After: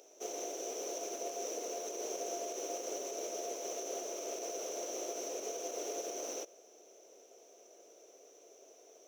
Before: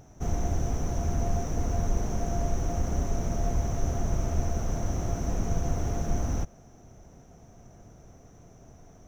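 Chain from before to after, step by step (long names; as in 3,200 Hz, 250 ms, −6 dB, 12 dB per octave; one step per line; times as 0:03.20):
brickwall limiter −20 dBFS, peak gain reduction 5.5 dB
Butterworth high-pass 400 Hz 36 dB per octave
flat-topped bell 1,200 Hz −13 dB
level +3 dB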